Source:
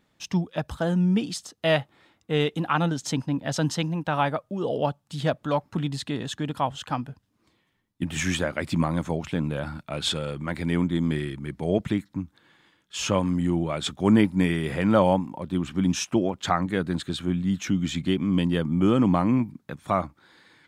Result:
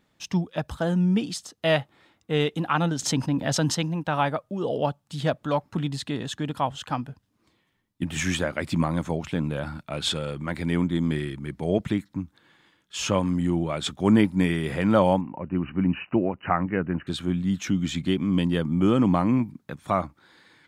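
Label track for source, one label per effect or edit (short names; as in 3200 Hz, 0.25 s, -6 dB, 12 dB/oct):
2.990000	3.750000	fast leveller amount 50%
15.210000	17.070000	brick-wall FIR low-pass 3000 Hz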